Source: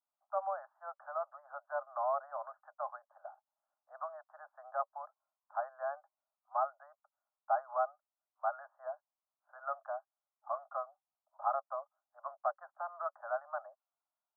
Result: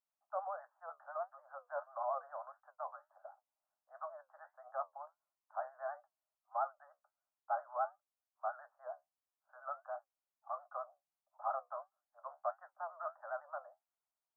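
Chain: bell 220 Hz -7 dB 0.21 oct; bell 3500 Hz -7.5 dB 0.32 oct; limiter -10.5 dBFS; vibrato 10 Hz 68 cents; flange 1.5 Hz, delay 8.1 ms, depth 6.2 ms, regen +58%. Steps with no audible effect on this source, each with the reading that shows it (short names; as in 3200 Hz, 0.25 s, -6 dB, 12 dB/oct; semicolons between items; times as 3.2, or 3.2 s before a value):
bell 220 Hz: input band starts at 510 Hz; bell 3500 Hz: input band ends at 1700 Hz; limiter -10.5 dBFS: input peak -18.5 dBFS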